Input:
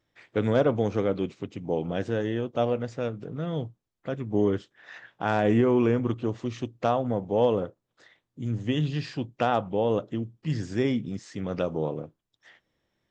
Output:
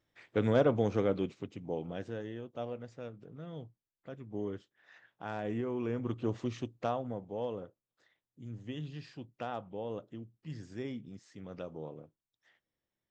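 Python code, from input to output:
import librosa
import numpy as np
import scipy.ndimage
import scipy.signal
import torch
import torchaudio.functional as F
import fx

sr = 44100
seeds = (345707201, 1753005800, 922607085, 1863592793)

y = fx.gain(x, sr, db=fx.line((1.12, -4.0), (2.38, -14.0), (5.78, -14.0), (6.36, -3.0), (7.39, -14.5)))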